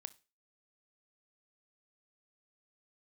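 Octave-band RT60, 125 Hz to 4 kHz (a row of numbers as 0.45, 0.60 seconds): 0.30, 0.30, 0.35, 0.30, 0.30, 0.30 seconds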